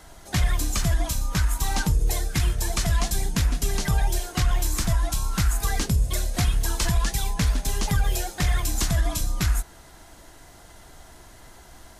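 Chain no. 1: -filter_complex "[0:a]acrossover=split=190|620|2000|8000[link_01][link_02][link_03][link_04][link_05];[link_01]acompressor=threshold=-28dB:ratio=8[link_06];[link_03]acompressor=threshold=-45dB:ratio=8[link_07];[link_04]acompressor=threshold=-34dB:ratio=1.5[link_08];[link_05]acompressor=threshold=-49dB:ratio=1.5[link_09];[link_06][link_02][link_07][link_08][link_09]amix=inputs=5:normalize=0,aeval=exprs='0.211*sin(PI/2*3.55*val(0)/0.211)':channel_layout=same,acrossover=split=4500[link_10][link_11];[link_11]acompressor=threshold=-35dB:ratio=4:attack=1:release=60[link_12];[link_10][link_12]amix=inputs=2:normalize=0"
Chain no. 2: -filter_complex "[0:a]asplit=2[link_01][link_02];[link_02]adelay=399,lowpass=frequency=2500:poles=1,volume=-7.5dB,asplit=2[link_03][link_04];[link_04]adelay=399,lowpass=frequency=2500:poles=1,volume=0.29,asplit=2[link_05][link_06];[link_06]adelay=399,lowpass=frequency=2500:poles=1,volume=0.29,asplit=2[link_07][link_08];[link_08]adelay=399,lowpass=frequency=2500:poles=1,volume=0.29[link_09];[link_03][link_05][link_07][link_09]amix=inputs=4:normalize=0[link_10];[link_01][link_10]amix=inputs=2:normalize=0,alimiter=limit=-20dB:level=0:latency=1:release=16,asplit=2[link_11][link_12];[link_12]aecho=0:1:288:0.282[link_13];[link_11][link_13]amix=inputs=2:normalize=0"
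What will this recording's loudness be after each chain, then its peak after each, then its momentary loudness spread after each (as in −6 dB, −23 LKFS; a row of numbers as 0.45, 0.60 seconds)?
−21.0, −29.0 LKFS; −12.5, −18.0 dBFS; 13, 17 LU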